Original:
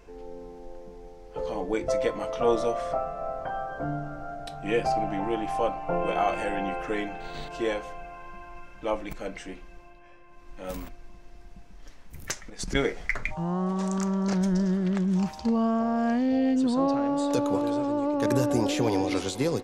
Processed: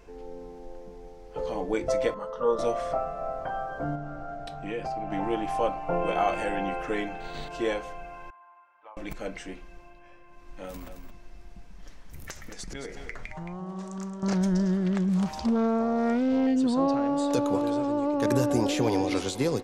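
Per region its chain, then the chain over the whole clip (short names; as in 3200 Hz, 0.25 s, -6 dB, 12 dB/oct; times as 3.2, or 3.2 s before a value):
2.14–2.59 tone controls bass -6 dB, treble -15 dB + fixed phaser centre 470 Hz, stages 8
3.95–5.12 high shelf 7100 Hz -9.5 dB + compressor 2.5:1, threshold -32 dBFS
8.3–8.97 ladder band-pass 1100 Hz, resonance 50% + compressor 5:1, threshold -43 dBFS
10.65–14.23 compressor 5:1, threshold -35 dBFS + echo 0.22 s -8 dB
15.09–16.47 upward compressor, threshold -27 dBFS + Doppler distortion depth 0.32 ms
whole clip: dry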